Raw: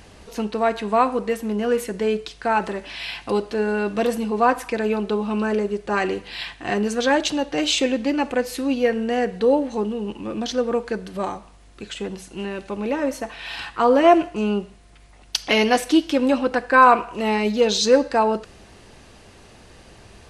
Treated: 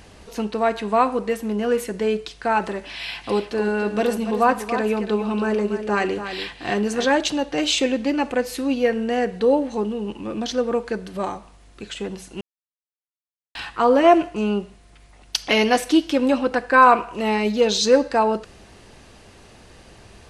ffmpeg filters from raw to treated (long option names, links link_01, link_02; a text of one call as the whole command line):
ffmpeg -i in.wav -filter_complex "[0:a]asettb=1/sr,asplit=3[link_01][link_02][link_03];[link_01]atrim=end=2.954[link_04];[link_02]atrim=start=2.95:end=7.05,asetpts=PTS-STARTPTS,afade=type=in:duration=0.004:curve=qsin,afade=type=out:start_time=4.096:duration=0.004:curve=qsin,aecho=1:1:286:0.335,atrim=end_sample=180810[link_05];[link_03]atrim=start=7.046[link_06];[link_04][link_05]acrossfade=duration=0.004:curve1=hsin:curve2=qsin[link_07];[link_07][link_06]acrossfade=duration=0.004:curve1=qsin:curve2=hsin,asplit=3[link_08][link_09][link_10];[link_08]atrim=end=12.41,asetpts=PTS-STARTPTS,afade=type=out:start_time=12.406:duration=0.004:curve=hsin[link_11];[link_09]atrim=start=12.41:end=13.55,asetpts=PTS-STARTPTS,volume=0[link_12];[link_10]atrim=start=13.55,asetpts=PTS-STARTPTS,afade=type=in:duration=0.004:curve=hsin[link_13];[link_11][link_12][link_13]concat=n=3:v=0:a=1" out.wav